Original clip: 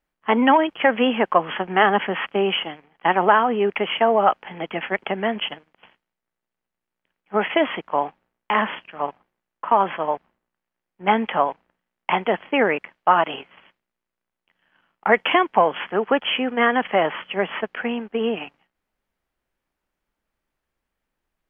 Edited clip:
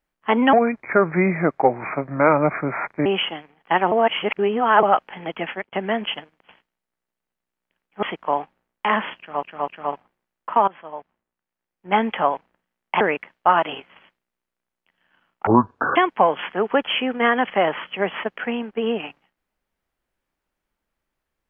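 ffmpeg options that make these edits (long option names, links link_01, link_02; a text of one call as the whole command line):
ffmpeg -i in.wav -filter_complex "[0:a]asplit=13[link_01][link_02][link_03][link_04][link_05][link_06][link_07][link_08][link_09][link_10][link_11][link_12][link_13];[link_01]atrim=end=0.534[link_14];[link_02]atrim=start=0.53:end=2.4,asetpts=PTS-STARTPTS,asetrate=32634,aresample=44100[link_15];[link_03]atrim=start=2.396:end=3.262[link_16];[link_04]atrim=start=3.258:end=4.172,asetpts=PTS-STARTPTS,areverse[link_17];[link_05]atrim=start=4.168:end=5.07,asetpts=PTS-STARTPTS,afade=type=out:start_time=0.642:duration=0.26[link_18];[link_06]atrim=start=5.07:end=7.372,asetpts=PTS-STARTPTS,afade=type=in:duration=0.004:curve=hsin[link_19];[link_07]atrim=start=7.678:end=9.082[link_20];[link_08]atrim=start=8.828:end=9.082[link_21];[link_09]atrim=start=8.828:end=9.83,asetpts=PTS-STARTPTS,afade=type=out:start_time=0.998:duration=0.004:curve=hsin:silence=0.112202[link_22];[link_10]atrim=start=9.83:end=12.162,asetpts=PTS-STARTPTS,afade=type=in:duration=1.37:silence=0.112202[link_23];[link_11]atrim=start=12.618:end=15.084[link_24];[link_12]atrim=start=15.08:end=15.33,asetpts=PTS-STARTPTS,asetrate=22491,aresample=44100[link_25];[link_13]atrim=start=15.326[link_26];[link_14][link_15]acrossfade=duration=0.004:curve1=hsin:curve2=hsin[link_27];[link_27][link_16]acrossfade=duration=0.004:curve1=hsin:curve2=hsin[link_28];[link_28][link_17]acrossfade=duration=0.004:curve1=hsin:curve2=hsin[link_29];[link_18][link_19]concat=n=2:v=0:a=1[link_30];[link_29][link_30]acrossfade=duration=0.004:curve1=hsin:curve2=hsin[link_31];[link_31][link_20]acrossfade=duration=0.004:curve1=hsin:curve2=hsin[link_32];[link_32][link_21]acrossfade=duration=0.004:curve1=hsin:curve2=hsin[link_33];[link_22][link_23]concat=n=2:v=0:a=1[link_34];[link_33][link_34]acrossfade=duration=0.004:curve1=hsin:curve2=hsin[link_35];[link_35][link_24]acrossfade=duration=0.004:curve1=hsin:curve2=hsin[link_36];[link_36][link_25]acrossfade=duration=0.004:curve1=hsin:curve2=hsin[link_37];[link_37][link_26]acrossfade=duration=0.004:curve1=hsin:curve2=hsin" out.wav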